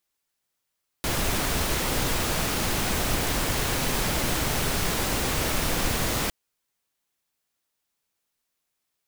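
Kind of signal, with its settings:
noise pink, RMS −25.5 dBFS 5.26 s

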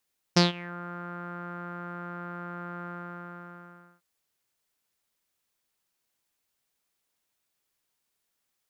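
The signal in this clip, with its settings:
subtractive voice saw F3 12 dB per octave, low-pass 1,400 Hz, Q 6.8, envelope 2 octaves, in 0.36 s, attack 11 ms, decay 0.15 s, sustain −23 dB, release 1.15 s, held 2.50 s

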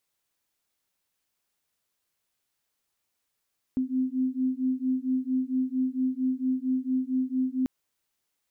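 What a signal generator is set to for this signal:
two tones that beat 256 Hz, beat 4.4 Hz, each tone −27.5 dBFS 3.89 s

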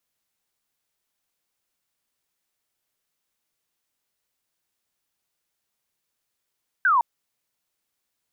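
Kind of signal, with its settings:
single falling chirp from 1,600 Hz, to 900 Hz, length 0.16 s sine, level −15.5 dB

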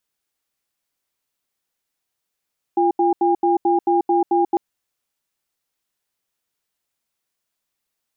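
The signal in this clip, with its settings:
tone pair in a cadence 346 Hz, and 808 Hz, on 0.14 s, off 0.08 s, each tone −16.5 dBFS 1.80 s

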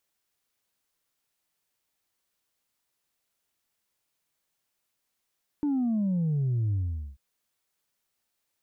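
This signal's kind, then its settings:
bass drop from 300 Hz, over 1.54 s, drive 1 dB, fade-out 0.44 s, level −24 dB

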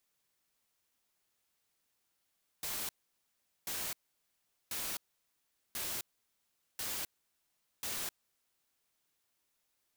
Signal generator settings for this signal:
noise bursts white, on 0.26 s, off 0.78 s, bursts 6, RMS −38.5 dBFS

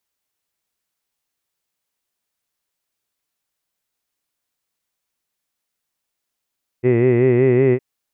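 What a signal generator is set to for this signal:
vowel by formant synthesis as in hid, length 0.96 s, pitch 120 Hz, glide +1.5 semitones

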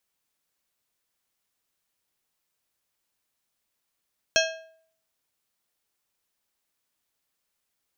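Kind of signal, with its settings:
struck metal plate, lowest mode 647 Hz, modes 8, decay 0.61 s, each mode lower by 1 dB, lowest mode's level −20 dB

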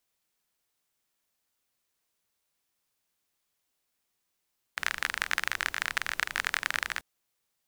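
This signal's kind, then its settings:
rain-like ticks over hiss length 2.24 s, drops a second 31, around 1,700 Hz, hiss −19 dB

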